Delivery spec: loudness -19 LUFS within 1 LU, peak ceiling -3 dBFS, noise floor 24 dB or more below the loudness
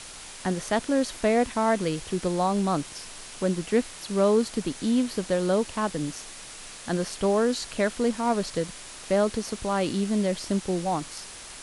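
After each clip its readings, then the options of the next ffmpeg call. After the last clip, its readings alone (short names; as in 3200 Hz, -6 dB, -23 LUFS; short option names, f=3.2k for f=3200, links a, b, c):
noise floor -43 dBFS; noise floor target -51 dBFS; loudness -26.5 LUFS; peak -10.5 dBFS; loudness target -19.0 LUFS
-> -af "afftdn=nr=8:nf=-43"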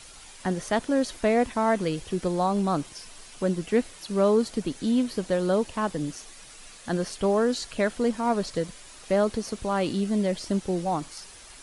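noise floor -47 dBFS; noise floor target -51 dBFS
-> -af "afftdn=nr=6:nf=-47"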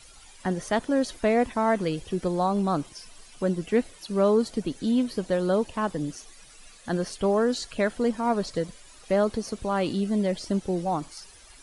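noise floor -51 dBFS; loudness -26.5 LUFS; peak -11.0 dBFS; loudness target -19.0 LUFS
-> -af "volume=7.5dB"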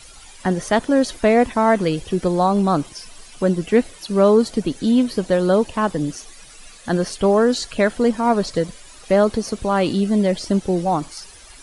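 loudness -19.0 LUFS; peak -3.5 dBFS; noise floor -43 dBFS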